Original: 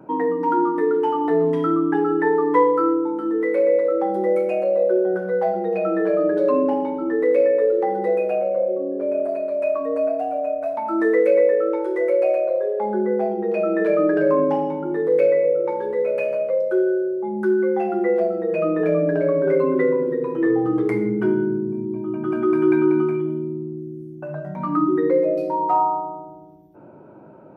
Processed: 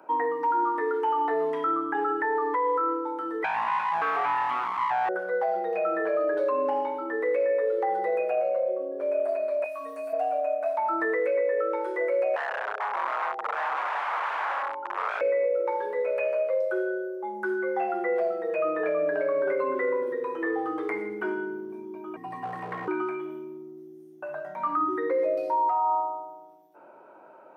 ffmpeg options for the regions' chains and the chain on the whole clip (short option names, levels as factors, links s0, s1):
-filter_complex "[0:a]asettb=1/sr,asplit=3[s0][s1][s2];[s0]atrim=end=3.444[s3];[s1]atrim=start=3.44:end=5.09,asetpts=PTS-STARTPTS,afade=t=in:d=0.004:c=qsin,afade=t=out:st=1.646:d=0.004:c=qsin,aecho=1:1:2.6:0.82,atrim=end_sample=72765,aeval=exprs='abs(val(0))':c=same[s4];[s2]atrim=start=5.086[s5];[s3][s4]acrossfade=d=0.004:c1=hsin:c2=qsin[s6];[s6][s5]acrossfade=d=0.004:c1=qsin:c2=hsin,asettb=1/sr,asplit=3[s7][s8][s9];[s7]atrim=end=9.644[s10];[s8]atrim=start=9.64:end=10.13,asetpts=PTS-STARTPTS,afade=t=in:d=0.004:c=qsin,afade=t=out:st=0.486:d=0.004:c=qsin,aemphasis=mode=production:type=75kf,acrossover=split=220|3000[s11][s12][s13];[s12]acompressor=threshold=0.0251:ratio=6:attack=3.2:release=140:knee=2.83:detection=peak[s14];[s11][s14][s13]amix=inputs=3:normalize=0,asplit=2[s15][s16];[s16]adelay=18,volume=0.631[s17];[s15][s17]amix=inputs=2:normalize=0,atrim=end_sample=21609[s18];[s9]atrim=start=10.126[s19];[s10][s18]acrossfade=d=0.004:c1=hsin:c2=qsin[s20];[s20][s19]acrossfade=d=0.004:c1=qsin:c2=hsin,asettb=1/sr,asplit=3[s21][s22][s23];[s21]atrim=end=12.364[s24];[s22]atrim=start=12.36:end=15.21,asetpts=PTS-STARTPTS,afade=t=in:d=0.004:c=qsin,afade=t=out:st=2.846:d=0.004:c=qsin,aeval=exprs='(mod(7.5*val(0)+1,2)-1)/7.5':c=same,bandpass=f=940:t=q:w=1.8[s25];[s23]atrim=start=15.206[s26];[s24][s25]acrossfade=d=0.004:c1=hsin:c2=qsin[s27];[s27][s26]acrossfade=d=0.004:c1=qsin:c2=hsin,asettb=1/sr,asplit=3[s28][s29][s30];[s28]atrim=end=22.164[s31];[s29]atrim=start=22.16:end=22.88,asetpts=PTS-STARTPTS,afade=t=in:d=0.004:c=qsin,afade=t=out:st=0.716:d=0.004:c=qsin,equalizer=f=560:t=o:w=1.1:g=-3.5,afreqshift=-490,asoftclip=type=hard:threshold=0.168[s32];[s30]atrim=start=22.876[s33];[s31][s32]acrossfade=d=0.004:c1=hsin:c2=qsin[s34];[s34][s33]acrossfade=d=0.004:c1=qsin:c2=hsin,acrossover=split=2600[s35][s36];[s36]acompressor=threshold=0.00112:ratio=4:attack=1:release=60[s37];[s35][s37]amix=inputs=2:normalize=0,highpass=760,alimiter=limit=0.0944:level=0:latency=1:release=31,volume=1.26"